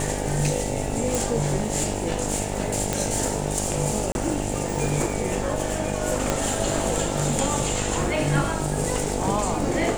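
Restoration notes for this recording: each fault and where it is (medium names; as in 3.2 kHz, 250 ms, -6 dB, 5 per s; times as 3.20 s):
buzz 50 Hz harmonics 18 -29 dBFS
1.15 s: pop
2.93 s: pop -7 dBFS
4.12–4.15 s: dropout 31 ms
6.30 s: pop -7 dBFS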